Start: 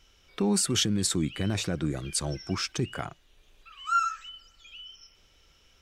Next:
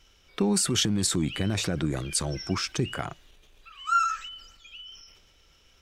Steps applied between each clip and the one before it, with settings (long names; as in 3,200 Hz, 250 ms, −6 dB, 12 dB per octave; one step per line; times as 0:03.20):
transient designer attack +3 dB, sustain +7 dB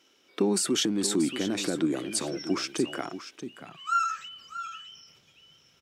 single-tap delay 633 ms −11.5 dB
high-pass filter sweep 290 Hz → 140 Hz, 0:03.32–0:04.07
level −2.5 dB